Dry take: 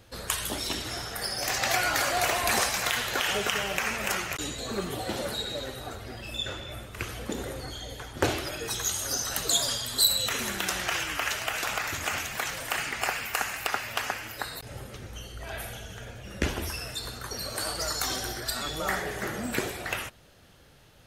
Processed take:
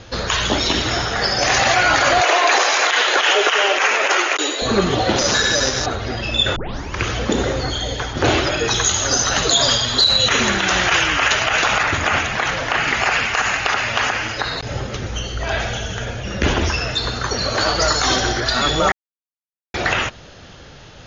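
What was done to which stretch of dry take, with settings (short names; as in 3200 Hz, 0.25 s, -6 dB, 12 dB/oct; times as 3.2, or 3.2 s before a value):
2.21–4.62 steep high-pass 310 Hz 48 dB/oct
5.18–5.86 careless resampling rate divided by 8×, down none, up zero stuff
6.56 tape start 0.45 s
11.83–12.88 high shelf 4400 Hz -10.5 dB
18.92–19.74 mute
whole clip: Chebyshev low-pass 6900 Hz, order 10; dynamic EQ 5400 Hz, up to -5 dB, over -48 dBFS, Q 2.2; maximiser +21 dB; gain -4.5 dB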